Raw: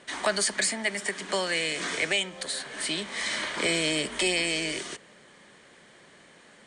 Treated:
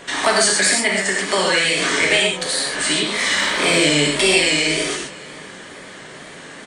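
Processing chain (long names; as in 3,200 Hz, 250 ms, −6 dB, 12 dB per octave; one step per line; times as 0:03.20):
in parallel at +3 dB: downward compressor, threshold −41 dBFS, peak gain reduction 18.5 dB
on the sum: tape wow and flutter 76 cents
0:03.15–0:03.80: surface crackle 51 per second −36 dBFS
single-tap delay 638 ms −23.5 dB
reverb whose tail is shaped and stops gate 160 ms flat, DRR −2.5 dB
level +5 dB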